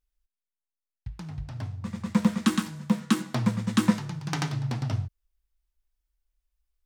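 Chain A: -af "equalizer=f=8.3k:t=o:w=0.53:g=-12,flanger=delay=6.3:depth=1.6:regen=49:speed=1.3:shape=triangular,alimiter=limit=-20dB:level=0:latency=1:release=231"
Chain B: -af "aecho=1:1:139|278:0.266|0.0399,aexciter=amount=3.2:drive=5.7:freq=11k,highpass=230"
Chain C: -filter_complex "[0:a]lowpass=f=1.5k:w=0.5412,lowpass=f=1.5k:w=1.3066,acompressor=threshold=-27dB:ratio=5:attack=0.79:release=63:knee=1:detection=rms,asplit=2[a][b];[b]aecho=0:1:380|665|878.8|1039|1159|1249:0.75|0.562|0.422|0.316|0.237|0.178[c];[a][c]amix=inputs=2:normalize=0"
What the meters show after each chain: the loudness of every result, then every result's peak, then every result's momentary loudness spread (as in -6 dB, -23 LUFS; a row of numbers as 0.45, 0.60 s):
-36.0, -30.5, -32.0 LUFS; -20.0, -11.0, -17.5 dBFS; 10, 19, 10 LU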